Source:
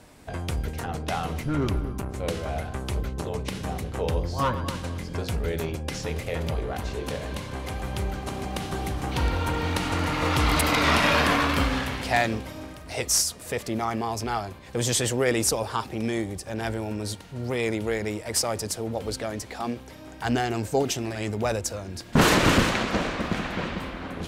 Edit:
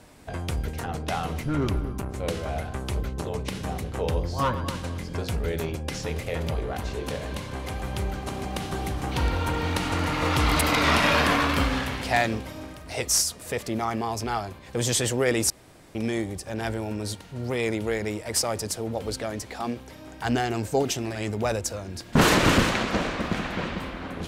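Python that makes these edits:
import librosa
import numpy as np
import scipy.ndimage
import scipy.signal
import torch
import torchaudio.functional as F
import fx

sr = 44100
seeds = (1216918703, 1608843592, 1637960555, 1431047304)

y = fx.edit(x, sr, fx.room_tone_fill(start_s=15.5, length_s=0.45), tone=tone)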